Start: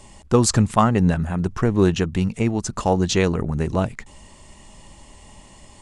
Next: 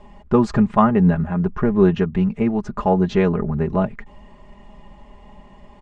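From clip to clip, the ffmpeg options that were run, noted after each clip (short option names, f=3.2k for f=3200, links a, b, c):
-af "lowpass=1.8k,aecho=1:1:4.9:0.68"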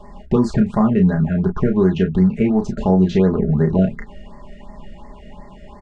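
-filter_complex "[0:a]acrossover=split=530|2500[a][b][c];[a]acompressor=threshold=-19dB:ratio=4[d];[b]acompressor=threshold=-35dB:ratio=4[e];[c]acompressor=threshold=-43dB:ratio=4[f];[d][e][f]amix=inputs=3:normalize=0,asplit=2[g][h];[h]aecho=0:1:32|44:0.531|0.168[i];[g][i]amix=inputs=2:normalize=0,afftfilt=real='re*(1-between(b*sr/1024,930*pow(3100/930,0.5+0.5*sin(2*PI*2.8*pts/sr))/1.41,930*pow(3100/930,0.5+0.5*sin(2*PI*2.8*pts/sr))*1.41))':imag='im*(1-between(b*sr/1024,930*pow(3100/930,0.5+0.5*sin(2*PI*2.8*pts/sr))/1.41,930*pow(3100/930,0.5+0.5*sin(2*PI*2.8*pts/sr))*1.41))':win_size=1024:overlap=0.75,volume=5dB"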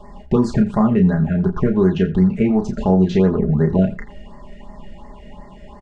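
-af "aecho=1:1:84:0.133"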